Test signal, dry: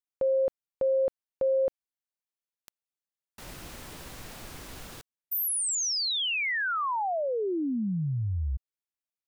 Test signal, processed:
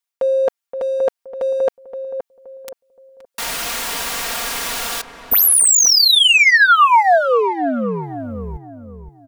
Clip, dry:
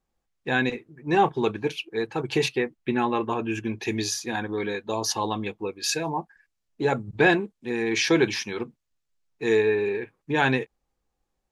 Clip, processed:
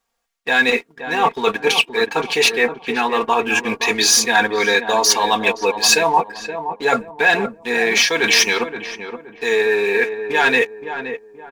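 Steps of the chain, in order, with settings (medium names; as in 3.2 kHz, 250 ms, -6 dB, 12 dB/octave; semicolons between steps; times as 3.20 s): reverse; compression 16:1, threshold -30 dBFS; reverse; tilt shelf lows -9.5 dB, about 900 Hz; waveshaping leveller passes 2; peaking EQ 690 Hz +8 dB 2.6 oct; comb 4.3 ms, depth 61%; on a send: filtered feedback delay 522 ms, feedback 37%, low-pass 1.2 kHz, level -8 dB; on the sum: trim +4.5 dB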